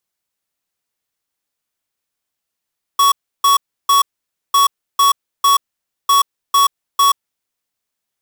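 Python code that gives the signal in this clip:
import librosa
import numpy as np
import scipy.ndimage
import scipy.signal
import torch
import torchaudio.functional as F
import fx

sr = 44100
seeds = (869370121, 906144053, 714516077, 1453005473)

y = fx.beep_pattern(sr, wave='square', hz=1120.0, on_s=0.13, off_s=0.32, beeps=3, pause_s=0.52, groups=3, level_db=-11.0)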